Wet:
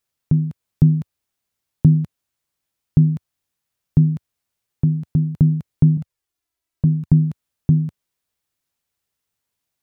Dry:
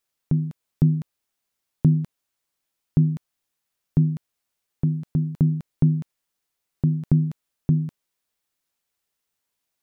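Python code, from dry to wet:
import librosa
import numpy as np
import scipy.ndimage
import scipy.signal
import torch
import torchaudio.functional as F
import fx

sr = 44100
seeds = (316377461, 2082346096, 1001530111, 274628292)

y = fx.peak_eq(x, sr, hz=88.0, db=8.5, octaves=1.9)
y = fx.env_flanger(y, sr, rest_ms=3.1, full_db=-12.0, at=(5.97, 7.13))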